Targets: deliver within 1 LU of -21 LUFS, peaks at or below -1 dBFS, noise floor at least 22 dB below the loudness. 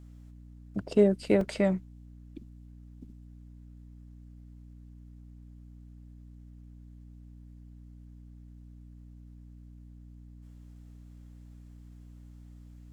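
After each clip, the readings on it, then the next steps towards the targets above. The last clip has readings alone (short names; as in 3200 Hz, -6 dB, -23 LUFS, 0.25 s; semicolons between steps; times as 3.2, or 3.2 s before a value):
dropouts 1; longest dropout 2.2 ms; hum 60 Hz; harmonics up to 300 Hz; hum level -47 dBFS; loudness -27.5 LUFS; peak -10.5 dBFS; loudness target -21.0 LUFS
-> interpolate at 1.41, 2.2 ms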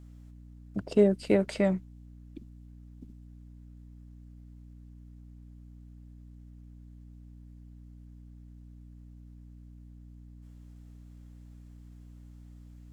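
dropouts 0; hum 60 Hz; harmonics up to 300 Hz; hum level -47 dBFS
-> notches 60/120/180/240/300 Hz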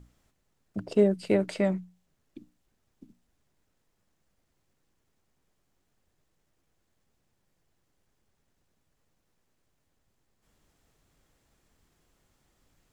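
hum none; loudness -27.0 LUFS; peak -10.5 dBFS; loudness target -21.0 LUFS
-> gain +6 dB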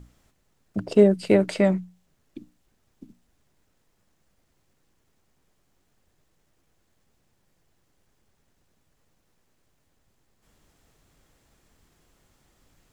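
loudness -21.5 LUFS; peak -4.5 dBFS; noise floor -70 dBFS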